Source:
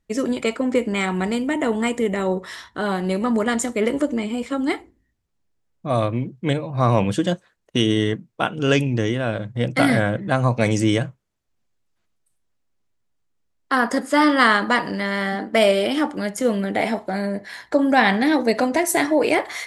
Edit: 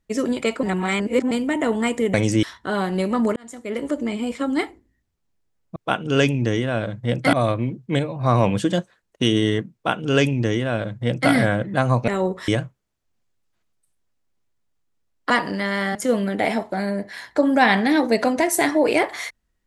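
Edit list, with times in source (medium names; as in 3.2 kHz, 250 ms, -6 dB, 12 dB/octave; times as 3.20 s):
0.63–1.31 s: reverse
2.14–2.54 s: swap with 10.62–10.91 s
3.47–4.29 s: fade in
8.28–9.85 s: copy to 5.87 s
13.73–14.70 s: delete
15.35–16.31 s: delete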